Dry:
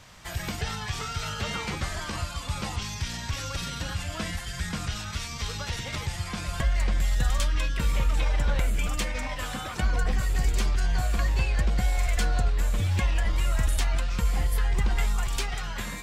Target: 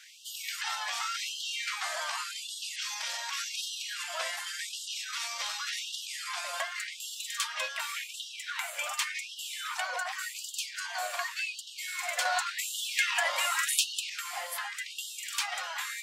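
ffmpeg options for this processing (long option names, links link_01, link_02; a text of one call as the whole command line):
ffmpeg -i in.wav -filter_complex "[0:a]asettb=1/sr,asplit=3[link_01][link_02][link_03];[link_01]atrim=end=12.254[link_04];[link_02]atrim=start=12.25:end=14.1,asetpts=PTS-STARTPTS,afade=type=in:duration=0.004:curve=qsin,afade=type=out:start_time=1.846:duration=0.004:curve=qsin,acontrast=76[link_05];[link_03]atrim=start=14.096[link_06];[link_04][link_05]acrossfade=duration=0.004:curve1=hsin:curve2=qsin[link_07];[link_07][link_06]acrossfade=duration=0.004:curve1=qsin:curve2=hsin,afftfilt=real='re*gte(b*sr/1024,500*pow(2800/500,0.5+0.5*sin(2*PI*0.88*pts/sr)))':imag='im*gte(b*sr/1024,500*pow(2800/500,0.5+0.5*sin(2*PI*0.88*pts/sr)))':win_size=1024:overlap=0.75,volume=1.5dB" out.wav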